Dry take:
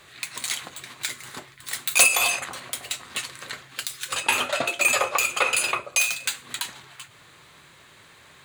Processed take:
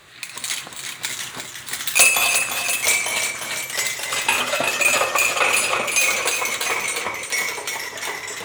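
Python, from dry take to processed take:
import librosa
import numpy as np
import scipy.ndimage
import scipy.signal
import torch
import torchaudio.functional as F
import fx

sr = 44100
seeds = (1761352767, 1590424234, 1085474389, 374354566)

y = fx.echo_pitch(x, sr, ms=632, semitones=-2, count=3, db_per_echo=-6.0)
y = fx.echo_multitap(y, sr, ms=(64, 351, 691), db=(-11.0, -7.0, -10.5))
y = fx.end_taper(y, sr, db_per_s=240.0)
y = y * 10.0 ** (2.5 / 20.0)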